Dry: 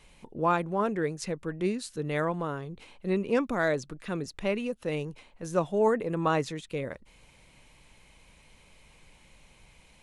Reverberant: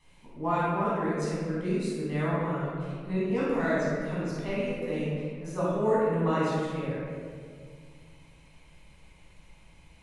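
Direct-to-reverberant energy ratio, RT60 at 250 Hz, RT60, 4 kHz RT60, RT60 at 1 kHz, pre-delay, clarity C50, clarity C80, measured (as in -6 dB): -9.5 dB, 2.7 s, 2.0 s, 1.1 s, 1.8 s, 13 ms, -4.0 dB, -1.0 dB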